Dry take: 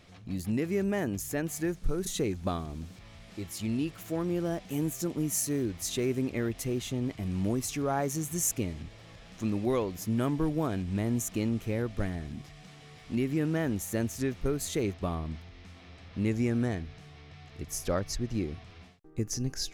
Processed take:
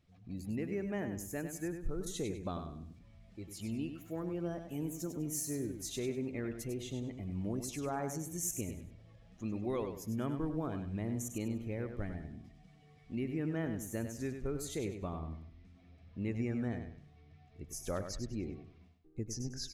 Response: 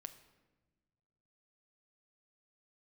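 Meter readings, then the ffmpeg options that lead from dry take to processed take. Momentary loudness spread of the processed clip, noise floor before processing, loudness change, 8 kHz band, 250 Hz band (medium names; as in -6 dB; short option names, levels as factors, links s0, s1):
13 LU, -52 dBFS, -7.5 dB, -7.5 dB, -7.5 dB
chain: -af "afftdn=nr=13:nf=-48,aecho=1:1:99|198|297|396:0.398|0.119|0.0358|0.0107,volume=0.398"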